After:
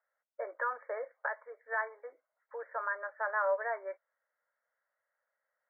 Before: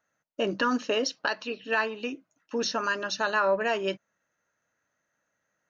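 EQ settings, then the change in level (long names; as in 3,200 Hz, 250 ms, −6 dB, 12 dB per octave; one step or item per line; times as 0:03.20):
elliptic high-pass filter 520 Hz, stop band 60 dB
linear-phase brick-wall low-pass 2,300 Hz
high-frequency loss of the air 260 metres
−4.5 dB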